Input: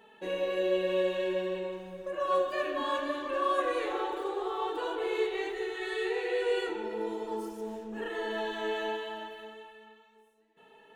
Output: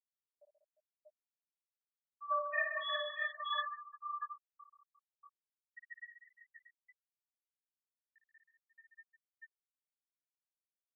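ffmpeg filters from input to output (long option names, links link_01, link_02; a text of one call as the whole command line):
ffmpeg -i in.wav -filter_complex "[0:a]acrossover=split=1200[link_01][link_02];[link_01]acompressor=threshold=-45dB:ratio=8[link_03];[link_03][link_02]amix=inputs=2:normalize=0,afreqshift=46,asplit=3[link_04][link_05][link_06];[link_04]afade=type=out:start_time=2.3:duration=0.02[link_07];[link_05]acontrast=79,afade=type=in:start_time=2.3:duration=0.02,afade=type=out:start_time=3.02:duration=0.02[link_08];[link_06]afade=type=in:start_time=3.02:duration=0.02[link_09];[link_07][link_08][link_09]amix=inputs=3:normalize=0,afftfilt=real='re*gte(hypot(re,im),0.112)':imag='im*gte(hypot(re,im),0.112)':win_size=1024:overlap=0.75,highpass=510,aecho=1:1:56|132|193|352|637|652:0.422|0.335|0.299|0.188|0.668|0.316,asplit=2[link_10][link_11];[link_11]adelay=3.5,afreqshift=-0.28[link_12];[link_10][link_12]amix=inputs=2:normalize=1" out.wav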